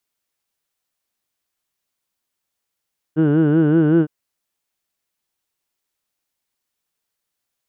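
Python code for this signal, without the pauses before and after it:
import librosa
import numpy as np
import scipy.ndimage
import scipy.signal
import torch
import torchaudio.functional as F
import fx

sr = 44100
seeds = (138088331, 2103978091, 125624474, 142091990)

y = fx.formant_vowel(sr, seeds[0], length_s=0.91, hz=151.0, glide_st=1.0, vibrato_hz=5.3, vibrato_st=1.05, f1_hz=360.0, f2_hz=1500.0, f3_hz=2900.0)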